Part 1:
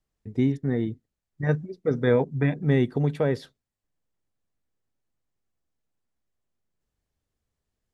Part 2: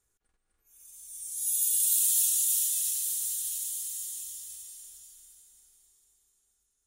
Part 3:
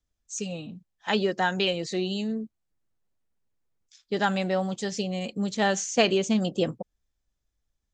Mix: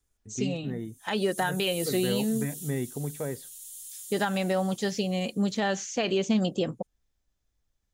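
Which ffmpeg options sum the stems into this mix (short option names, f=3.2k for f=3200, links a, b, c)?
-filter_complex "[0:a]volume=-9.5dB,asplit=2[a][b];[1:a]volume=-5dB[c];[2:a]acrossover=split=4900[d][e];[e]acompressor=threshold=-43dB:ratio=4:attack=1:release=60[f];[d][f]amix=inputs=2:normalize=0,volume=2dB[g];[b]apad=whole_len=302855[h];[c][h]sidechaincompress=threshold=-35dB:ratio=8:attack=5.5:release=1040[i];[a][i][g]amix=inputs=3:normalize=0,alimiter=limit=-16.5dB:level=0:latency=1:release=156"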